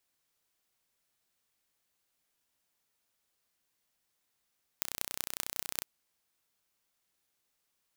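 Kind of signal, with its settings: pulse train 31/s, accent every 6, -3.5 dBFS 1.01 s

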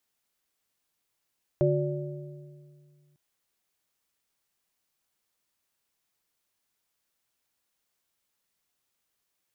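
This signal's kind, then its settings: metal hit plate, lowest mode 146 Hz, modes 3, decay 2.29 s, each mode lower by 0 dB, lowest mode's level -23 dB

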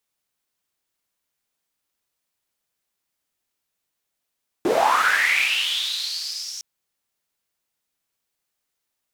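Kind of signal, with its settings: swept filtered noise white, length 1.96 s bandpass, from 290 Hz, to 5700 Hz, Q 7.6, linear, gain ramp -26.5 dB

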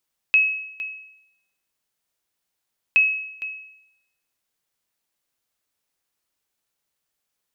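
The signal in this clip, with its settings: sonar ping 2570 Hz, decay 0.80 s, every 2.62 s, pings 2, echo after 0.46 s, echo -14.5 dB -10 dBFS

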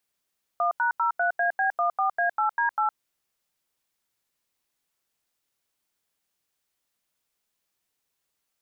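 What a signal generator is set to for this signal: DTMF "1#03AB14A8D8", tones 0.112 s, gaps 86 ms, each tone -23.5 dBFS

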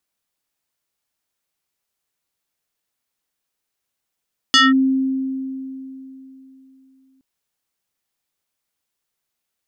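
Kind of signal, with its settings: FM tone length 2.67 s, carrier 265 Hz, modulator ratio 5.99, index 3.2, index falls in 0.19 s linear, decay 3.38 s, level -8 dB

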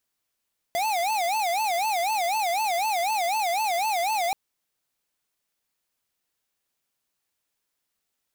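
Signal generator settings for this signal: siren wail 677–886 Hz 4/s square -25 dBFS 3.58 s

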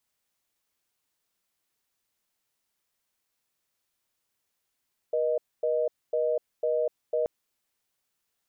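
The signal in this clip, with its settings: call progress tone reorder tone, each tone -26 dBFS 2.13 s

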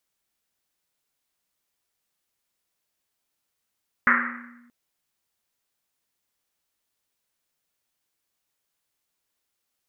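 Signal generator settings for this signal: Risset drum length 0.63 s, pitch 240 Hz, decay 1.42 s, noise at 1600 Hz, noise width 900 Hz, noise 75%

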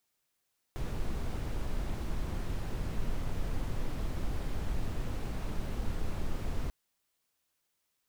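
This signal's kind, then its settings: noise brown, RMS -32 dBFS 5.94 s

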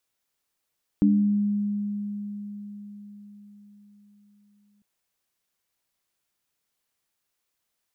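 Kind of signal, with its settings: sine partials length 3.80 s, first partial 205 Hz, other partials 290 Hz, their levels -2 dB, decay 4.97 s, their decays 0.61 s, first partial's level -16 dB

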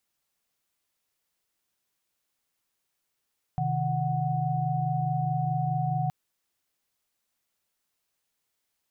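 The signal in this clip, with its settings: chord C3/D#3/F#5 sine, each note -29 dBFS 2.52 s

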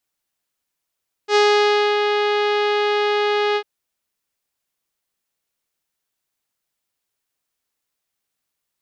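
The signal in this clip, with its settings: synth note saw G#4 24 dB/oct, low-pass 4000 Hz, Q 1.1, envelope 0.5 oct, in 0.69 s, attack 73 ms, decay 0.61 s, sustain -5 dB, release 0.07 s, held 2.28 s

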